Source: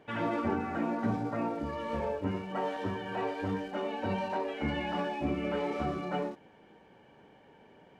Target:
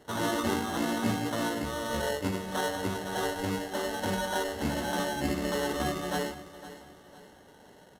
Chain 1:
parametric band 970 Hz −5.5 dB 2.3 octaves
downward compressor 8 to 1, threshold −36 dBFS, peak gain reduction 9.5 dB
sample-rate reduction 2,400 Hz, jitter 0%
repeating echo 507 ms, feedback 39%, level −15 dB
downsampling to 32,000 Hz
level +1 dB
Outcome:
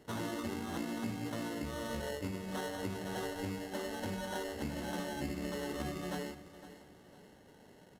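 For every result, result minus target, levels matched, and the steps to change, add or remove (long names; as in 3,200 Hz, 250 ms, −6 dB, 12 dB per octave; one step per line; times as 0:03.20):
downward compressor: peak gain reduction +9.5 dB; 1,000 Hz band −2.5 dB
remove: downward compressor 8 to 1, threshold −36 dBFS, peak gain reduction 9.5 dB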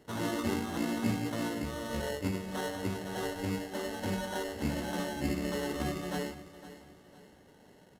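1,000 Hz band −3.5 dB
change: parametric band 970 Hz +2 dB 2.3 octaves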